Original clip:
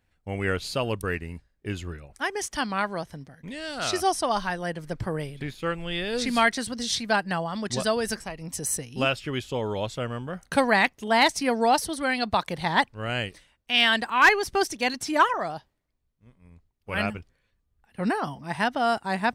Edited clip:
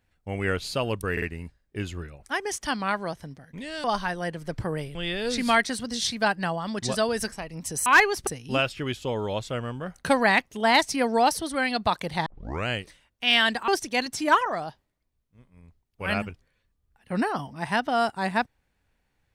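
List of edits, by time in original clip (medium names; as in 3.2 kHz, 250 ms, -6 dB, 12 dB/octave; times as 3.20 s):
1.12 s: stutter 0.05 s, 3 plays
3.74–4.26 s: delete
5.37–5.83 s: delete
12.73 s: tape start 0.41 s
14.15–14.56 s: move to 8.74 s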